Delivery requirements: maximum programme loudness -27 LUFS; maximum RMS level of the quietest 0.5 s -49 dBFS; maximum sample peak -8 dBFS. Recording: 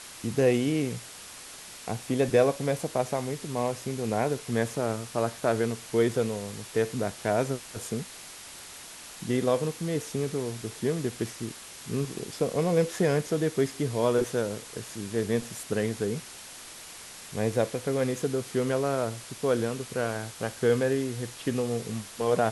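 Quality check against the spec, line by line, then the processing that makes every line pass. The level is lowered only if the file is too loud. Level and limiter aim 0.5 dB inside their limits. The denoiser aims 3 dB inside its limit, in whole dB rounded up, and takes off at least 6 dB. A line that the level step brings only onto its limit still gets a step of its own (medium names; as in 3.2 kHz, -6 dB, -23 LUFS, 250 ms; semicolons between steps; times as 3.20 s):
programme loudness -29.0 LUFS: pass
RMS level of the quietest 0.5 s -45 dBFS: fail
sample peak -10.0 dBFS: pass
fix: noise reduction 7 dB, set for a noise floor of -45 dBFS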